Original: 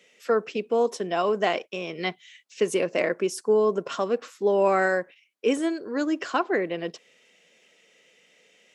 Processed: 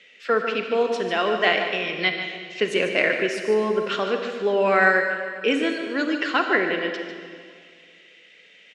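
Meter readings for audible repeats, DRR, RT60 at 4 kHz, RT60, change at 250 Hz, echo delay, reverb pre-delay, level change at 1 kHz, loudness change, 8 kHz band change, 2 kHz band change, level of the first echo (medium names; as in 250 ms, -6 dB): 1, 4.0 dB, 1.8 s, 2.2 s, +1.5 dB, 148 ms, 30 ms, +3.0 dB, +3.5 dB, -4.5 dB, +10.0 dB, -9.0 dB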